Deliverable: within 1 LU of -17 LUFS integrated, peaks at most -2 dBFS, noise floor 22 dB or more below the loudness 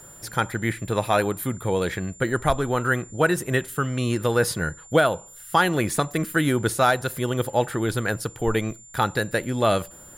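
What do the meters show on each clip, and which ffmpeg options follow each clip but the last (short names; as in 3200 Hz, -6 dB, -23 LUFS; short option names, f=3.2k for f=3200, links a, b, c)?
steady tone 7200 Hz; tone level -45 dBFS; loudness -24.0 LUFS; peak -7.5 dBFS; loudness target -17.0 LUFS
-> -af "bandreject=f=7.2k:w=30"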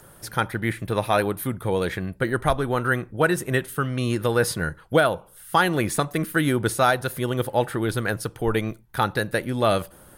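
steady tone none; loudness -24.0 LUFS; peak -7.5 dBFS; loudness target -17.0 LUFS
-> -af "volume=7dB,alimiter=limit=-2dB:level=0:latency=1"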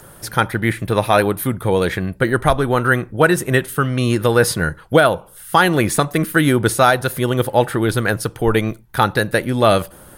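loudness -17.5 LUFS; peak -2.0 dBFS; noise floor -44 dBFS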